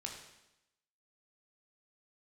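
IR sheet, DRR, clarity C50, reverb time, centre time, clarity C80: 0.0 dB, 4.5 dB, 0.90 s, 36 ms, 7.0 dB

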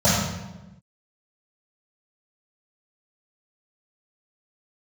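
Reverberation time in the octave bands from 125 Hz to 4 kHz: 1.3, 1.4, 1.1, 1.0, 0.90, 0.75 seconds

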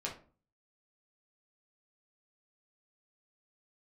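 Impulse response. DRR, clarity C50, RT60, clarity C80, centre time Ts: −3.5 dB, 9.0 dB, 0.40 s, 15.5 dB, 21 ms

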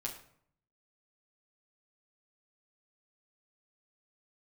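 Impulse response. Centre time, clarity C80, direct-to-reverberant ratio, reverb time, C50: 20 ms, 12.0 dB, −1.5 dB, 0.65 s, 8.5 dB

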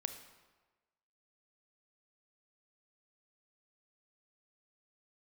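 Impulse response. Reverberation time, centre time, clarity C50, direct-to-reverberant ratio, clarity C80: 1.3 s, 16 ms, 9.0 dB, 7.5 dB, 11.0 dB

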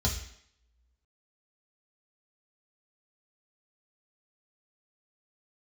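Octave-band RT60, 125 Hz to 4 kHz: 0.50, 0.65, 0.70, 0.70, 0.70, 0.70 seconds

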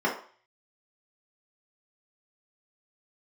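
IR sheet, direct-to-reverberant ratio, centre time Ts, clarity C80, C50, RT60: −6.0 dB, 25 ms, 12.5 dB, 7.5 dB, 0.45 s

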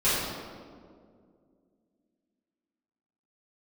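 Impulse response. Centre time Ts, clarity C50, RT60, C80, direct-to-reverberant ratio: 114 ms, −2.0 dB, 2.1 s, 0.5 dB, −14.0 dB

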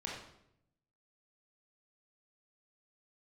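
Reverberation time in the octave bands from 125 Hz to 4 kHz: 1.2, 1.0, 0.85, 0.70, 0.65, 0.60 seconds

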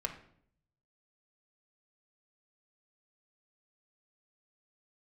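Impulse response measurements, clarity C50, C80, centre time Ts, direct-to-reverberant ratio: 9.5 dB, 13.5 dB, 13 ms, 2.0 dB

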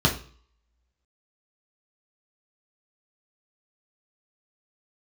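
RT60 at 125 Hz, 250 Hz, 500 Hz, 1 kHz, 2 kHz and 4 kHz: 0.55, 0.45, 0.45, 0.50, 0.45, 0.45 seconds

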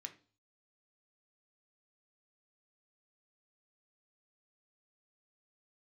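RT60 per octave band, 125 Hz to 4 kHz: 0.65, 0.45, 0.40, 0.40, 0.35, 0.45 seconds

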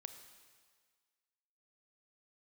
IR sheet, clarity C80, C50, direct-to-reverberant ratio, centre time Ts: 10.0 dB, 9.0 dB, 8.0 dB, 21 ms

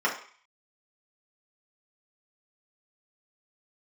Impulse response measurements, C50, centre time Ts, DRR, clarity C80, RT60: 8.0 dB, 23 ms, −5.0 dB, 12.0 dB, 0.45 s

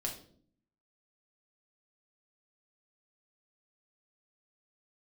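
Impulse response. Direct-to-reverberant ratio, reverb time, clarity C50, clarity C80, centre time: −0.5 dB, 0.55 s, 8.5 dB, 13.0 dB, 22 ms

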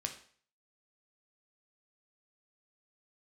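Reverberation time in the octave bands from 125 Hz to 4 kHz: 0.50, 0.45, 0.50, 0.50, 0.50, 0.45 seconds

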